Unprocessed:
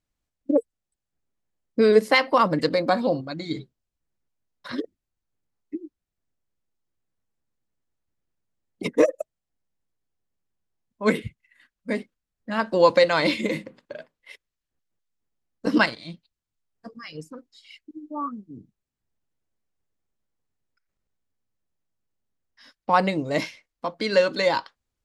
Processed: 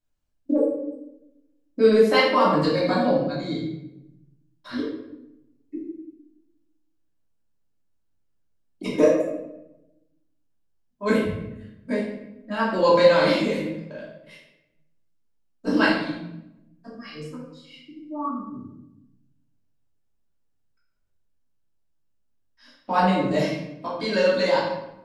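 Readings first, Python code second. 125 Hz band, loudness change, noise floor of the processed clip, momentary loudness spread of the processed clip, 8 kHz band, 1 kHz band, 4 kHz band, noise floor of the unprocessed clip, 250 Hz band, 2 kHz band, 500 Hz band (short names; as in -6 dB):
+3.5 dB, +1.0 dB, -68 dBFS, 22 LU, n/a, +0.5 dB, +0.5 dB, -85 dBFS, +3.0 dB, -0.5 dB, +1.5 dB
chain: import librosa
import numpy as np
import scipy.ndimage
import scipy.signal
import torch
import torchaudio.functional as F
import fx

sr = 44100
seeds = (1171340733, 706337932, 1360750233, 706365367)

y = fx.peak_eq(x, sr, hz=2000.0, db=-5.5, octaves=0.2)
y = fx.room_shoebox(y, sr, seeds[0], volume_m3=300.0, walls='mixed', distance_m=2.8)
y = y * 10.0 ** (-7.5 / 20.0)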